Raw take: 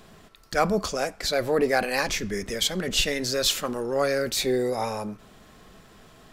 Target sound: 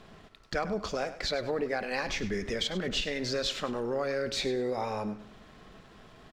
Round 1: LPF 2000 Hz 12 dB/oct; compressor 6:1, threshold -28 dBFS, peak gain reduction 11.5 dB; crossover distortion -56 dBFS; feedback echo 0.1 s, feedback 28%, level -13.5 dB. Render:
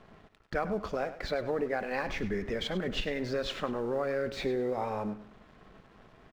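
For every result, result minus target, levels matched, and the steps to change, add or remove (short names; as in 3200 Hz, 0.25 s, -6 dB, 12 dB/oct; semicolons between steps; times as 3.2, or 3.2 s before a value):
4000 Hz band -5.5 dB; crossover distortion: distortion +7 dB
change: LPF 4400 Hz 12 dB/oct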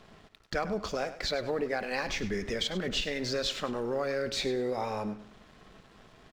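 crossover distortion: distortion +7 dB
change: crossover distortion -63.5 dBFS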